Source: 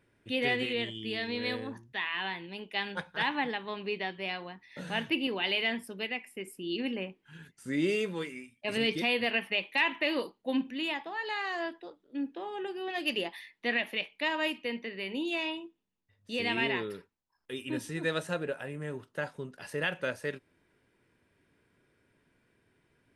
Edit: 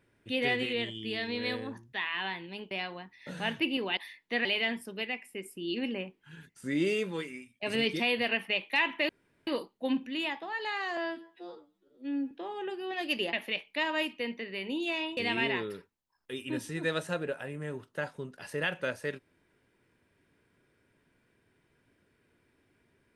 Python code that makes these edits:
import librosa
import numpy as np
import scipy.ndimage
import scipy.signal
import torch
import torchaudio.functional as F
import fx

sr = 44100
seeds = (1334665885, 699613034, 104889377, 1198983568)

y = fx.edit(x, sr, fx.cut(start_s=2.71, length_s=1.5),
    fx.insert_room_tone(at_s=10.11, length_s=0.38),
    fx.stretch_span(start_s=11.61, length_s=0.67, factor=2.0),
    fx.move(start_s=13.3, length_s=0.48, to_s=5.47),
    fx.cut(start_s=15.62, length_s=0.75), tone=tone)